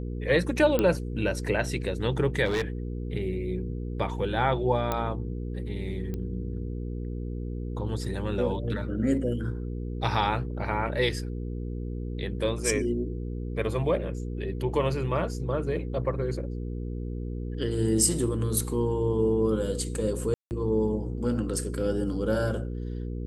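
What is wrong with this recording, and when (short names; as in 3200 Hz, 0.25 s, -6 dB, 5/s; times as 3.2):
hum 60 Hz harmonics 8 -33 dBFS
0.79 pop -11 dBFS
2.45–2.62 clipped -23 dBFS
4.92 pop -13 dBFS
6.14 pop -22 dBFS
20.34–20.51 gap 0.169 s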